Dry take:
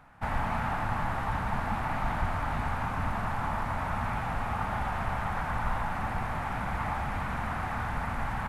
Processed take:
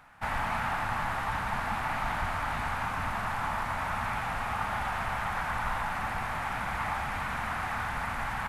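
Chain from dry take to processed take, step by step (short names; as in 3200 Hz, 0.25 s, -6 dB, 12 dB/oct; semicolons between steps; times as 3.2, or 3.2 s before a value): tilt shelf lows -5.5 dB, about 860 Hz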